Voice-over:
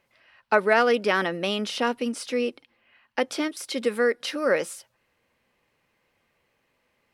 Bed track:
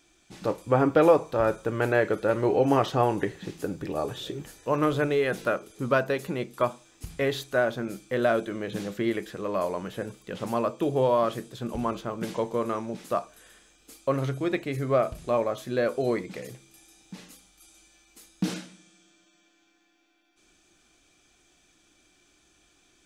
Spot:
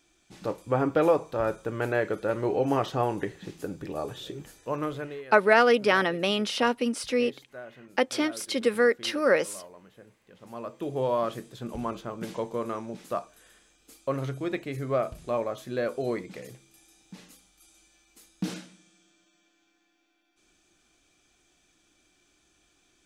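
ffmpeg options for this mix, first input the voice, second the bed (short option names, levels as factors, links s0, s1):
-filter_complex "[0:a]adelay=4800,volume=1.06[s0];[1:a]volume=3.76,afade=t=out:st=4.58:d=0.67:silence=0.177828,afade=t=in:st=10.41:d=0.72:silence=0.177828[s1];[s0][s1]amix=inputs=2:normalize=0"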